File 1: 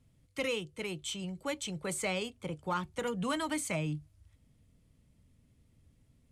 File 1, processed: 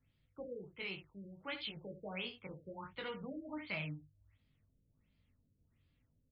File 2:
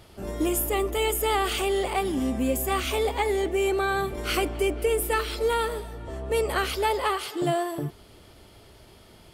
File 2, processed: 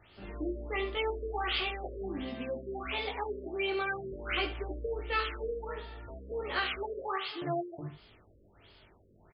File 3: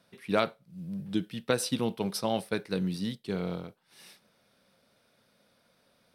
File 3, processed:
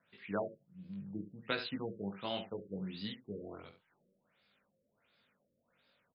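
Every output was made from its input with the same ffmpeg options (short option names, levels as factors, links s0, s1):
-filter_complex "[0:a]acrossover=split=770|3700[s0][s1][s2];[s1]crystalizer=i=9:c=0[s3];[s0][s3][s2]amix=inputs=3:normalize=0,flanger=delay=19:depth=2:speed=0.62,aecho=1:1:70:0.299,afftfilt=real='re*lt(b*sr/1024,580*pow(5300/580,0.5+0.5*sin(2*PI*1.4*pts/sr)))':imag='im*lt(b*sr/1024,580*pow(5300/580,0.5+0.5*sin(2*PI*1.4*pts/sr)))':win_size=1024:overlap=0.75,volume=0.422"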